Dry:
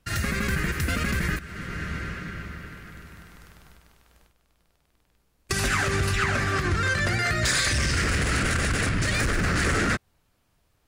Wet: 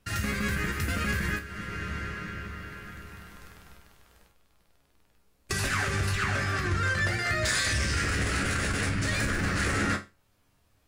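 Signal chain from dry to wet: chord resonator C#2 sus4, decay 0.25 s; in parallel at -1.5 dB: compression, threshold -49 dBFS, peak gain reduction 18 dB; on the sum: trim +5 dB

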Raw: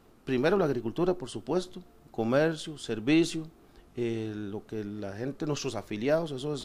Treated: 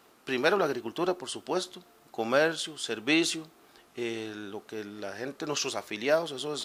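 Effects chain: high-pass 1 kHz 6 dB/octave; trim +7 dB

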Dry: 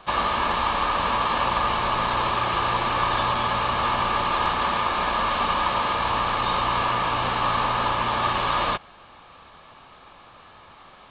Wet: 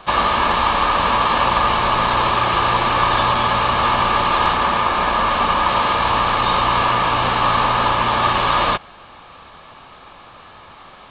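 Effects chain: 4.57–5.69 s: treble shelf 4.3 kHz -6 dB; trim +6.5 dB

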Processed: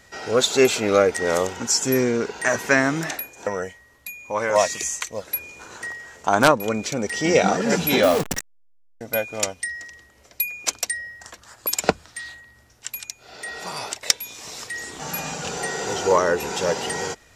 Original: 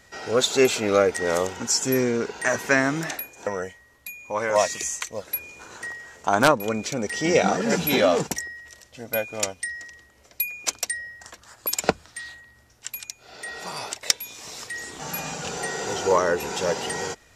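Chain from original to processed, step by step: 8.03–9.01 s: send-on-delta sampling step -25.5 dBFS; trim +2 dB

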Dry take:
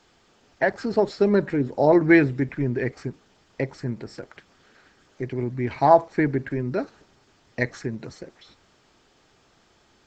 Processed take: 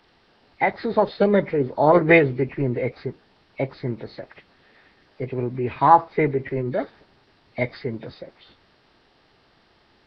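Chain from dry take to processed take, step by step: knee-point frequency compression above 1.7 kHz 1.5:1; formant shift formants +3 st; trim +1.5 dB

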